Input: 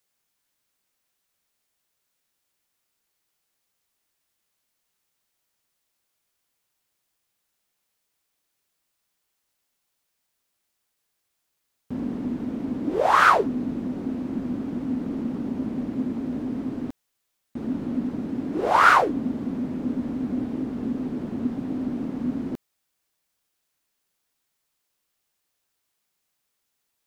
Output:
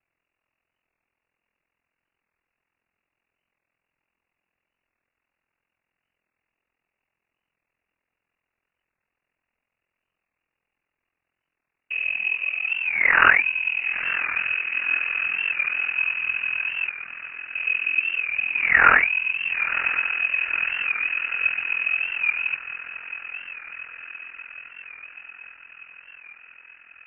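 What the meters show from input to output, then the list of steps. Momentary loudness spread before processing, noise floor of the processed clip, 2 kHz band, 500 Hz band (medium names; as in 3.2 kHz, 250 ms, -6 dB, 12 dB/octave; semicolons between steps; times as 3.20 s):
14 LU, -84 dBFS, +11.0 dB, -11.5 dB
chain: on a send: echo that smears into a reverb 980 ms, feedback 67%, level -13 dB; on the sum: ring modulator 21 Hz; in parallel at -11.5 dB: decimation with a swept rate 23×, swing 60% 0.32 Hz; on the sum: frequency inversion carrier 2.8 kHz; warped record 45 rpm, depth 100 cents; trim +3.5 dB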